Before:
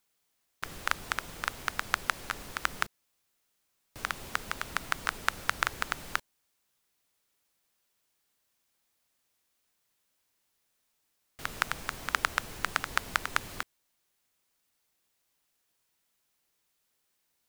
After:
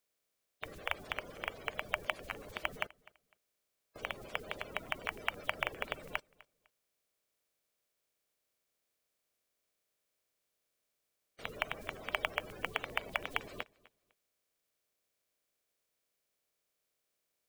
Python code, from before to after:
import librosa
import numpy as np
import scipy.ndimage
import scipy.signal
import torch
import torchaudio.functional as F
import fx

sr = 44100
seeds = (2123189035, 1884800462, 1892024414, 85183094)

p1 = fx.spec_quant(x, sr, step_db=30)
p2 = fx.peak_eq(p1, sr, hz=460.0, db=7.0, octaves=0.65)
p3 = fx.notch(p2, sr, hz=900.0, q=11.0)
p4 = fx.small_body(p3, sr, hz=(610.0, 2300.0), ring_ms=45, db=7)
p5 = p4 + fx.echo_feedback(p4, sr, ms=252, feedback_pct=26, wet_db=-23, dry=0)
y = F.gain(torch.from_numpy(p5), -7.0).numpy()